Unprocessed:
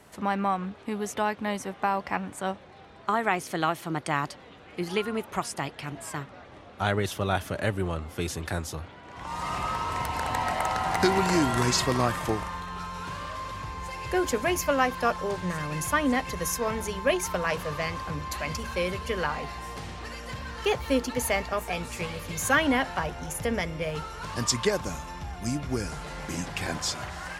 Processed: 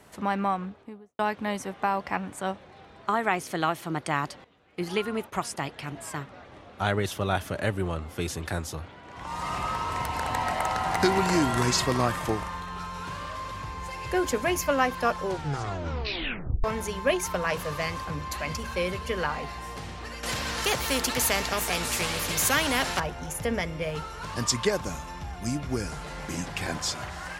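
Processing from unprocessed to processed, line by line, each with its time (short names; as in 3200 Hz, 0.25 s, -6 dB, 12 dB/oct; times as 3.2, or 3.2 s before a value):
0.45–1.19 studio fade out
4.44–5.64 gate -46 dBFS, range -13 dB
15.23 tape stop 1.41 s
17.56–18.05 high shelf 6300 Hz +6 dB
20.23–23 spectral compressor 2:1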